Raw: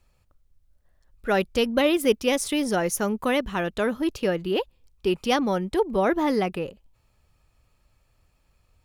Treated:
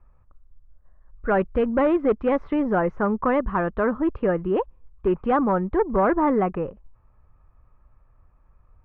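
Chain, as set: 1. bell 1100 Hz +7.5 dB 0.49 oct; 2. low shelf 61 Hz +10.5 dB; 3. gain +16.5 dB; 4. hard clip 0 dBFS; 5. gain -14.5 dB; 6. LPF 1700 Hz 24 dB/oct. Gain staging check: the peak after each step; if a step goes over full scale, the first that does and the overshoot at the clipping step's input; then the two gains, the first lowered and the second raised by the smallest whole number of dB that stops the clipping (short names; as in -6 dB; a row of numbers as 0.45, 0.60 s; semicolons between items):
-8.0, -7.5, +9.0, 0.0, -14.5, -13.0 dBFS; step 3, 9.0 dB; step 3 +7.5 dB, step 5 -5.5 dB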